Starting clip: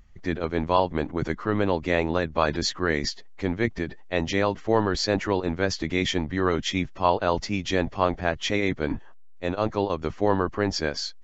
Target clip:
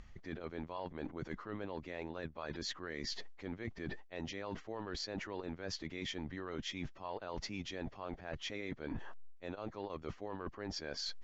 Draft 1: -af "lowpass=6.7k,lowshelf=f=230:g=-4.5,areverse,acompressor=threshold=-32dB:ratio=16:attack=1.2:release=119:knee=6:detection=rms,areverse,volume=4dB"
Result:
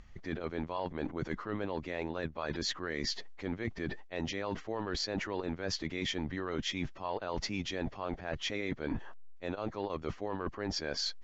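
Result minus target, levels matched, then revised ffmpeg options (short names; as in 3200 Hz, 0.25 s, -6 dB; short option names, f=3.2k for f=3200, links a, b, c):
compressor: peak gain reduction -6.5 dB
-af "lowpass=6.7k,lowshelf=f=230:g=-4.5,areverse,acompressor=threshold=-39dB:ratio=16:attack=1.2:release=119:knee=6:detection=rms,areverse,volume=4dB"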